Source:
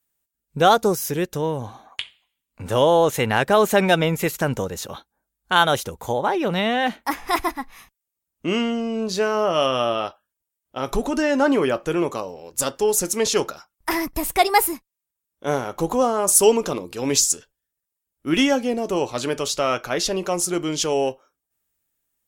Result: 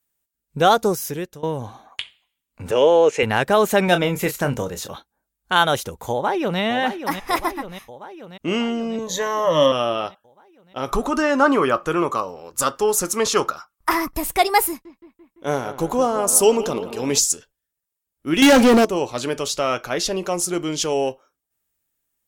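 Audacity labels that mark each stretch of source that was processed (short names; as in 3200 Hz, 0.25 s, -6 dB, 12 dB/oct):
0.800000	1.430000	fade out equal-power, to -19.5 dB
2.710000	3.230000	speaker cabinet 270–7100 Hz, peaks and dips at 440 Hz +9 dB, 700 Hz -4 dB, 1100 Hz -5 dB, 2500 Hz +10 dB, 3700 Hz -9 dB
3.850000	4.930000	doubler 28 ms -9.5 dB
6.110000	6.600000	echo throw 0.59 s, feedback 65%, level -9 dB
8.980000	9.720000	ripple EQ crests per octave 1.1, crest to trough 17 dB
10.880000	14.160000	bell 1200 Hz +12.5 dB 0.52 oct
14.680000	17.190000	analogue delay 0.17 s, stages 4096, feedback 67%, level -14 dB
18.420000	18.850000	sample leveller passes 5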